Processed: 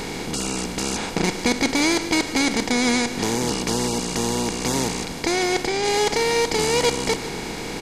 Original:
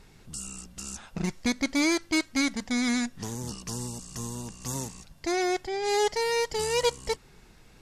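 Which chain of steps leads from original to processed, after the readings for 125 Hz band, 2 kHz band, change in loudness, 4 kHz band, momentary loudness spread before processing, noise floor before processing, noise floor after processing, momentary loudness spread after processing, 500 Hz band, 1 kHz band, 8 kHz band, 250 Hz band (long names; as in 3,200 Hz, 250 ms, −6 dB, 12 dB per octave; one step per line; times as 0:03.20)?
+7.5 dB, +8.0 dB, +7.5 dB, +9.5 dB, 12 LU, −55 dBFS, −31 dBFS, 6 LU, +7.0 dB, +7.5 dB, +9.0 dB, +6.5 dB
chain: compressor on every frequency bin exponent 0.4
single-tap delay 146 ms −14.5 dB
level +2 dB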